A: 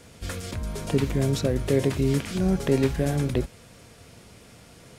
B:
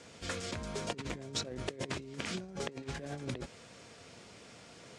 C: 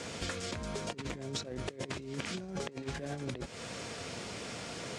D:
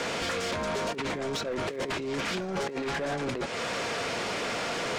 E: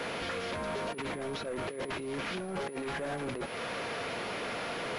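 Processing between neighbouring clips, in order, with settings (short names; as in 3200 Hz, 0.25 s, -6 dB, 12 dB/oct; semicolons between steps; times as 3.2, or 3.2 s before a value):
LPF 8000 Hz 24 dB/oct; negative-ratio compressor -28 dBFS, ratio -0.5; HPF 270 Hz 6 dB/oct; gain -6 dB
compressor 10:1, threshold -47 dBFS, peak gain reduction 16.5 dB; gain +12 dB
crackle 110/s -53 dBFS; overdrive pedal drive 24 dB, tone 1800 Hz, clips at -18.5 dBFS; sine folder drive 7 dB, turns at -18.5 dBFS; gain -8.5 dB
pulse-width modulation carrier 10000 Hz; gain -4.5 dB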